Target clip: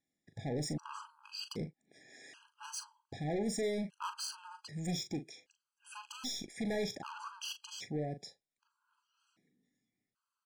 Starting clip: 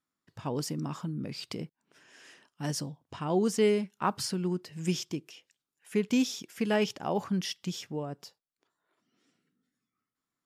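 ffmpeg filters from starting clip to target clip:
-filter_complex "[0:a]aresample=22050,aresample=44100,asoftclip=type=tanh:threshold=-33.5dB,asettb=1/sr,asplit=3[a][b][c];[a]atrim=end=6.054[d];[b]atrim=start=6.05:end=6.54,asetpts=PTS-STARTPTS,afade=t=in:d=0.004:c=qsin,afade=t=out:st=0.486:d=0.004:c=qsin,aeval=exprs='0.0211*(cos(1*acos(clip(val(0)/0.0211,-1,1)))-cos(1*PI/2))+0.00188*(cos(4*acos(clip(val(0)/0.0211,-1,1)))-cos(4*PI/2))':c=same[e];[c]atrim=start=6.536[f];[d][e]acrossfade=d=0.004:c1=hsin:c2=qsin[g];[g][f]acrossfade=d=0.004:c1=qsin:c2=hsin,asplit=2[h][i];[i]adelay=40,volume=-10.5dB[j];[h][j]amix=inputs=2:normalize=0,afftfilt=real='re*gt(sin(2*PI*0.64*pts/sr)*(1-2*mod(floor(b*sr/1024/820),2)),0)':imag='im*gt(sin(2*PI*0.64*pts/sr)*(1-2*mod(floor(b*sr/1024/820),2)),0)':win_size=1024:overlap=0.75,volume=1.5dB"

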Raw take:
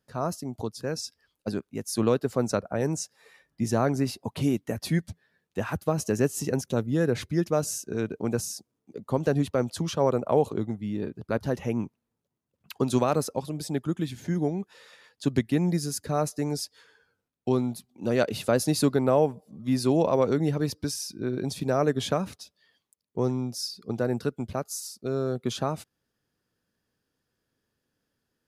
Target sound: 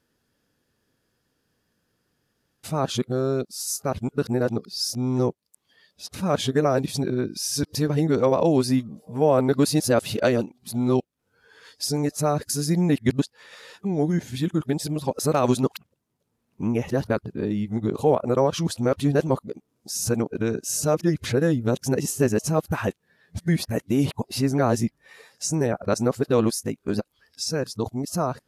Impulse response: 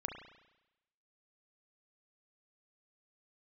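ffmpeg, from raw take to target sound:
-filter_complex "[0:a]areverse,asplit=2[a][b];[b]acompressor=threshold=-32dB:ratio=6,volume=1dB[c];[a][c]amix=inputs=2:normalize=0,volume=1dB" -ar 32000 -c:a libvorbis -b:a 96k

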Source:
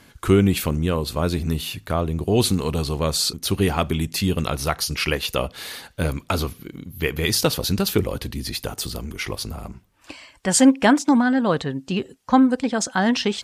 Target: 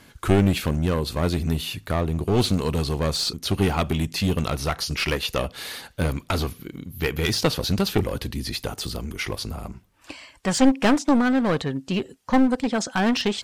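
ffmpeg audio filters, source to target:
-filter_complex "[0:a]acrossover=split=5800[a][b];[b]acompressor=threshold=-36dB:ratio=4:attack=1:release=60[c];[a][c]amix=inputs=2:normalize=0,aeval=exprs='clip(val(0),-1,0.1)':c=same"

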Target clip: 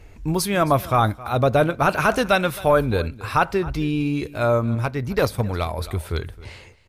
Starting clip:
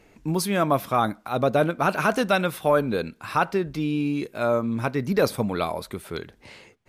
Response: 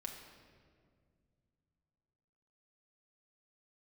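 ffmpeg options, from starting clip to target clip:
-filter_complex "[0:a]lowshelf=f=120:t=q:w=1.5:g=14,aecho=1:1:266:0.112,asettb=1/sr,asplit=3[a][b][c];[a]atrim=end=4.754[d];[b]atrim=start=4.75:end=5.78,asetpts=PTS-STARTPTS,afade=t=in:d=0.004:c=qsin,afade=t=out:st=1.026:d=0.004:c=qsin,aeval=exprs='0.335*(cos(1*acos(clip(val(0)/0.335,-1,1)))-cos(1*PI/2))+0.0473*(cos(3*acos(clip(val(0)/0.335,-1,1)))-cos(3*PI/2))':c=same[e];[c]atrim=start=5.776[f];[d][e]acrossfade=d=0.004:c1=hsin:c2=qsin[g];[g][f]acrossfade=d=0.004:c1=qsin:c2=hsin,volume=3.5dB"

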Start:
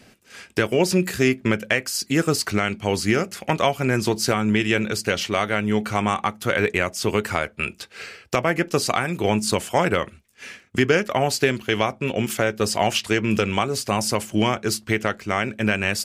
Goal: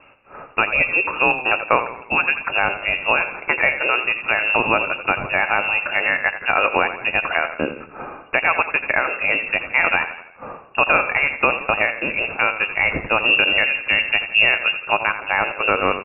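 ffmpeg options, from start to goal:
-filter_complex "[0:a]asettb=1/sr,asplit=3[a][b][c];[a]atrim=end=8.634[d];[b]atrim=start=8.63:end=9.3,asetpts=PTS-STARTPTS,afade=t=in:d=0.004:c=qsin,afade=t=out:st=0.666:d=0.004:c=qsin,highpass=150[e];[c]atrim=start=9.296[f];[d][e]acrossfade=d=0.004:c1=hsin:c2=qsin[g];[g][f]acrossfade=d=0.004:c1=qsin:c2=hsin,asettb=1/sr,asplit=3[h][i][j];[h]atrim=end=13.254[k];[i]atrim=start=13.25:end=14.82,asetpts=PTS-STARTPTS,afade=t=in:d=0.004:c=qsin,afade=t=out:st=1.566:d=0.004:c=qsin,aemphasis=mode=reproduction:type=bsi[l];[j]atrim=start=14.816[m];[k][l]acrossfade=d=0.004:c1=hsin:c2=qsin[n];[n][m]acrossfade=d=0.004:c1=qsin:c2=hsin,asplit=6[o][p][q][r][s][t];[p]adelay=84,afreqshift=31,volume=-11dB[u];[q]adelay=168,afreqshift=62,volume=-17.4dB[v];[r]adelay=252,afreqshift=93,volume=-23.8dB[w];[s]adelay=336,afreqshift=124,volume=-30.1dB[x];[t]adelay=420,afreqshift=155,volume=-36.5dB[y];[o][u][v][w][x][y]amix=inputs=6:normalize=0,crystalizer=i=7.5:c=0,lowpass=f=2.5k:t=q:w=0.5098,lowpass=f=2.5k:t=q:w=0.6013,lowpass=f=2.5k:t=q:w=0.9,lowpass=f=2.5k:t=q:w=2.563,afreqshift=-2900,volume=-1dB"

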